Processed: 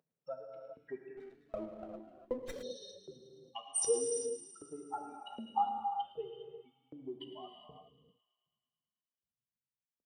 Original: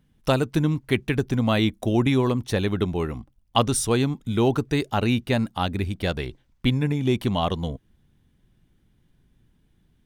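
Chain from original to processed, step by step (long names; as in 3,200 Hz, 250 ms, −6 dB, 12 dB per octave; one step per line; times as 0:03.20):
expanding power law on the bin magnitudes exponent 3.9
downward compressor 1.5 to 1, threshold −33 dBFS, peak gain reduction 6.5 dB
flanger 0.31 Hz, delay 6.9 ms, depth 9.9 ms, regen −60%
auto-filter high-pass saw up 1.3 Hz 480–4,300 Hz
delay with a high-pass on its return 109 ms, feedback 70%, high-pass 1,800 Hz, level −11 dB
reverb whose tail is shaped and stops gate 430 ms flat, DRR 2.5 dB
0:01.17–0:02.63: windowed peak hold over 9 samples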